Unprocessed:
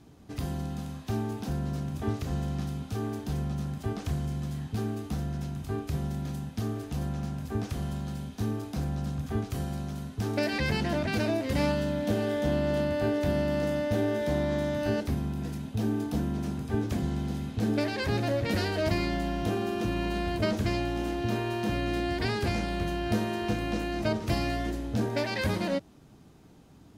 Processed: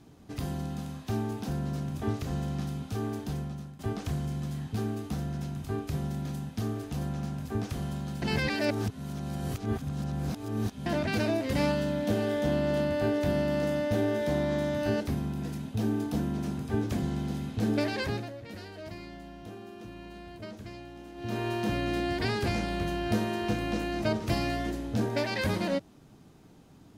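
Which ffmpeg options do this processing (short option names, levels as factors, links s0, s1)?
-filter_complex "[0:a]asplit=6[s0][s1][s2][s3][s4][s5];[s0]atrim=end=3.79,asetpts=PTS-STARTPTS,afade=t=out:st=3.24:d=0.55:silence=0.177828[s6];[s1]atrim=start=3.79:end=8.222,asetpts=PTS-STARTPTS,afade=t=in:d=0.004:c=hsin:silence=0.177828[s7];[s2]atrim=start=8.218:end=10.862,asetpts=PTS-STARTPTS,areverse[s8];[s3]atrim=start=10.858:end=18.31,asetpts=PTS-STARTPTS,afade=t=out:st=7.132:d=0.32:silence=0.188365[s9];[s4]atrim=start=18.31:end=21.14,asetpts=PTS-STARTPTS,volume=0.188[s10];[s5]atrim=start=21.14,asetpts=PTS-STARTPTS,afade=t=in:d=0.32:silence=0.188365[s11];[s6][s7]concat=n=2:v=0:a=1[s12];[s12][s8]acrossfade=d=0.004:c1=hsin:c2=hsin[s13];[s9][s10][s11]concat=n=3:v=0:a=1[s14];[s13][s14]acrossfade=d=0.004:c1=hsin:c2=hsin,equalizer=f=66:t=o:w=0.42:g=-6.5"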